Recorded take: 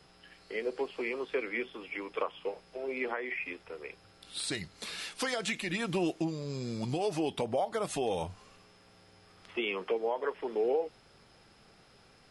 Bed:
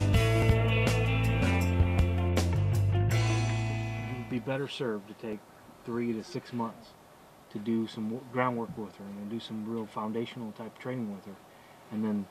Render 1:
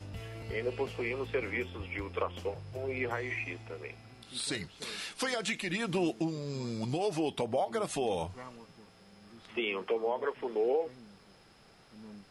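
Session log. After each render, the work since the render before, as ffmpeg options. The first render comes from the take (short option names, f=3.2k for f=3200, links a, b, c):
-filter_complex "[1:a]volume=-18.5dB[a];[0:a][a]amix=inputs=2:normalize=0"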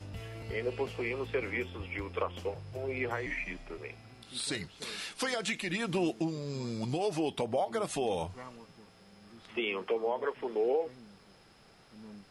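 -filter_complex "[0:a]asettb=1/sr,asplit=3[a][b][c];[a]atrim=end=3.264[d];[b]atrim=start=3.26:end=3.78,asetpts=PTS-STARTPTS,afade=t=in:d=0.004:c=qsin,afade=t=out:st=0.516:d=0.004:c=qsin,afreqshift=-78[e];[c]atrim=start=3.776[f];[d][e]acrossfade=d=0.004:c1=hsin:c2=qsin[g];[g][f]acrossfade=d=0.004:c1=qsin:c2=hsin"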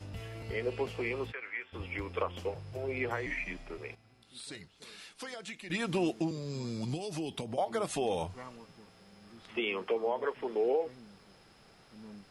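-filter_complex "[0:a]asplit=3[a][b][c];[a]afade=t=out:st=1.31:d=0.02[d];[b]bandpass=f=1.7k:t=q:w=1.9,afade=t=in:st=1.31:d=0.02,afade=t=out:st=1.72:d=0.02[e];[c]afade=t=in:st=1.72:d=0.02[f];[d][e][f]amix=inputs=3:normalize=0,asettb=1/sr,asplit=3[g][h][i];[g]atrim=end=6.314[j];[h]atrim=start=6.31:end=7.58,asetpts=PTS-STARTPTS,afade=t=in:d=0.004:c=qsin,afade=t=out:st=1.266:d=0.004:c=qsin,acrossover=split=290|3000[k][l][m];[l]acompressor=threshold=-41dB:ratio=6:attack=3.2:release=140:knee=2.83:detection=peak[n];[k][n][m]amix=inputs=3:normalize=0[o];[i]atrim=start=7.576[p];[j][o]acrossfade=d=0.004:c1=hsin:c2=qsin[q];[q][p]acrossfade=d=0.004:c1=qsin:c2=hsin,asplit=3[r][s][t];[r]atrim=end=3.952[u];[s]atrim=start=3.948:end=5.702,asetpts=PTS-STARTPTS,volume=-10dB[v];[t]atrim=start=5.698[w];[u][v]acrossfade=d=0.004:c1=hsin:c2=hsin[x];[x][w]acrossfade=d=0.004:c1=hsin:c2=hsin"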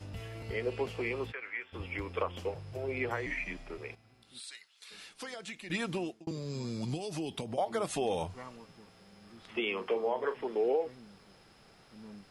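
-filter_complex "[0:a]asplit=3[a][b][c];[a]afade=t=out:st=4.39:d=0.02[d];[b]highpass=1.5k,afade=t=in:st=4.39:d=0.02,afade=t=out:st=4.9:d=0.02[e];[c]afade=t=in:st=4.9:d=0.02[f];[d][e][f]amix=inputs=3:normalize=0,asettb=1/sr,asplit=3[g][h][i];[g]atrim=end=9.734[j];[h]atrim=start=9.73:end=10.42,asetpts=PTS-STARTPTS,afade=t=in:d=0.004:c=qsin,afade=t=out:st=0.686:d=0.004:c=qsin,asplit=2[k][l];[l]adelay=40,volume=-11.5dB[m];[k][m]amix=inputs=2:normalize=0,atrim=end_sample=30429[n];[i]atrim=start=10.416[o];[j][n]acrossfade=d=0.004:c1=hsin:c2=qsin[p];[p][o]acrossfade=d=0.004:c1=qsin:c2=hsin,asplit=2[q][r];[q]atrim=end=6.27,asetpts=PTS-STARTPTS,afade=t=out:st=5.78:d=0.49[s];[r]atrim=start=6.27,asetpts=PTS-STARTPTS,afade=t=in:d=0.004:c=hsin[t];[s][t]concat=n=2:v=0:a=1"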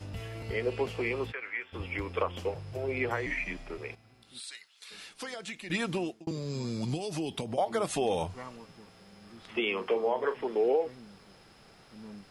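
-af "volume=3dB"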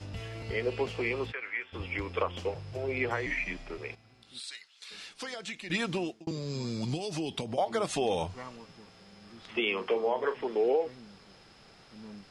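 -af "lowpass=5.7k,aemphasis=mode=production:type=cd"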